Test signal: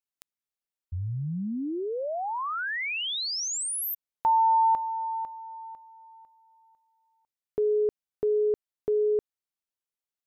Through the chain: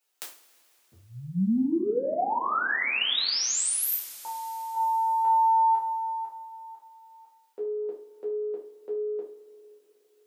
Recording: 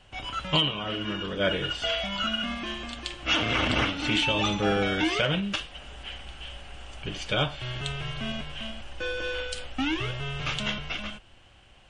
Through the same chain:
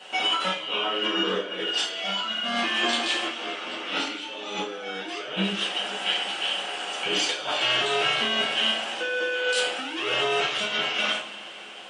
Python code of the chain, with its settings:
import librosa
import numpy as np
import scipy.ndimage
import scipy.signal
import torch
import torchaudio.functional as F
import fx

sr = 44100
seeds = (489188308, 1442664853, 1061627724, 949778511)

y = scipy.signal.sosfilt(scipy.signal.butter(4, 300.0, 'highpass', fs=sr, output='sos'), x)
y = fx.over_compress(y, sr, threshold_db=-38.0, ratio=-1.0)
y = fx.rev_double_slope(y, sr, seeds[0], early_s=0.37, late_s=3.7, knee_db=-22, drr_db=-6.0)
y = y * 10.0 ** (2.0 / 20.0)